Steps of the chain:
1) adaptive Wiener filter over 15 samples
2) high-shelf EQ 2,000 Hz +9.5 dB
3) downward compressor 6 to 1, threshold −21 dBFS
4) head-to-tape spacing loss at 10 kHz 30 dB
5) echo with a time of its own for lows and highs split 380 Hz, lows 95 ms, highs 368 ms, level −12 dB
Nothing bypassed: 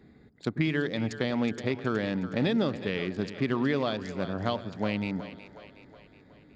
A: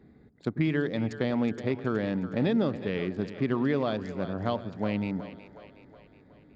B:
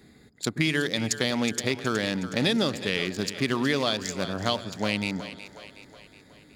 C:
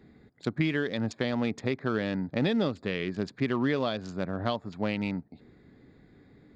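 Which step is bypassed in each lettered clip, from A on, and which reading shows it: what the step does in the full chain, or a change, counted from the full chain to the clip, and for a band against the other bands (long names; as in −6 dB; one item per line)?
2, 4 kHz band −6.0 dB
4, 4 kHz band +9.0 dB
5, echo-to-direct ratio −10.5 dB to none audible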